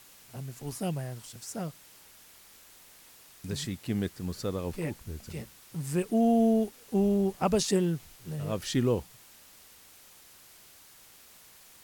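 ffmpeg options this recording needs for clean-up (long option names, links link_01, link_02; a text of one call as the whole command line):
ffmpeg -i in.wav -af "adeclick=threshold=4,afwtdn=0.002" out.wav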